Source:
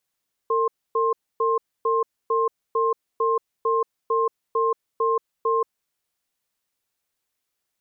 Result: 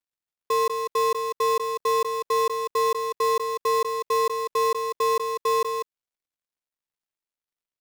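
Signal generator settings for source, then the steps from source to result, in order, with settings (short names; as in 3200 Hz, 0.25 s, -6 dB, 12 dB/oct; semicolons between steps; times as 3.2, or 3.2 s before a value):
cadence 454 Hz, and 1060 Hz, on 0.18 s, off 0.27 s, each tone -21 dBFS 5.20 s
switching dead time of 0.13 ms; on a send: echo 0.195 s -6 dB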